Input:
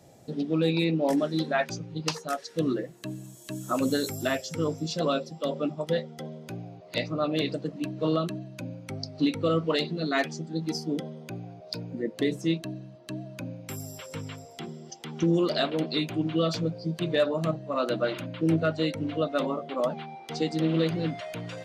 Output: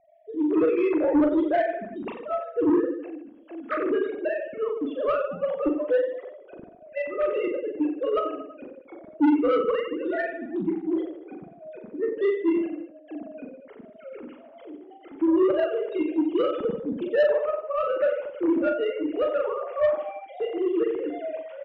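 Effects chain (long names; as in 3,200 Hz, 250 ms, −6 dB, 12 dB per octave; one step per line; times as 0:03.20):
three sine waves on the formant tracks
low-pass filter 2,700 Hz 12 dB per octave
low-shelf EQ 260 Hz +10 dB
reverse bouncing-ball delay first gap 40 ms, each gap 1.25×, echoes 5
on a send at −19 dB: convolution reverb, pre-delay 12 ms
on the sum: soft clipping −15 dBFS, distortion −12 dB
one half of a high-frequency compander decoder only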